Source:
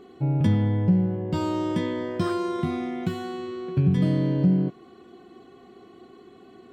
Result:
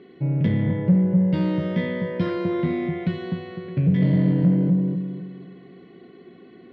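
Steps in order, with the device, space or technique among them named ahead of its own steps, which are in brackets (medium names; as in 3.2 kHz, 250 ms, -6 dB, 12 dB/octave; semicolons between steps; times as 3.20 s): analogue delay pedal into a guitar amplifier (bucket-brigade echo 252 ms, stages 2048, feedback 37%, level -3.5 dB; valve stage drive 17 dB, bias 0.3; cabinet simulation 93–4100 Hz, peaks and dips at 170 Hz +8 dB, 550 Hz +3 dB, 790 Hz -9 dB, 1.2 kHz -8 dB, 2 kHz +9 dB); trim +1 dB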